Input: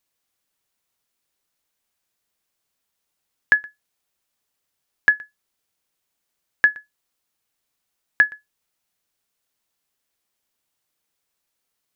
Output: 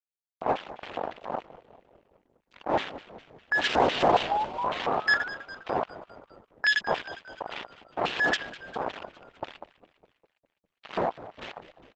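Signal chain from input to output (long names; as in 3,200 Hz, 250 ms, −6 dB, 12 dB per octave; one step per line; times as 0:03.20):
wind on the microphone 370 Hz −38 dBFS
downward expander −43 dBFS
dynamic equaliser 200 Hz, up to −5 dB, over −42 dBFS, Q 7.3
speech leveller within 3 dB 0.5 s
fuzz pedal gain 38 dB, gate −37 dBFS
sound drawn into the spectrogram rise, 0:03.88–0:05.29, 610–1,500 Hz −30 dBFS
auto-filter band-pass square 3.6 Hz 770–3,100 Hz
on a send: echo with shifted repeats 203 ms, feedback 60%, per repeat −60 Hz, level −15.5 dB
on the sum: level +4.5 dB
Opus 10 kbit/s 48,000 Hz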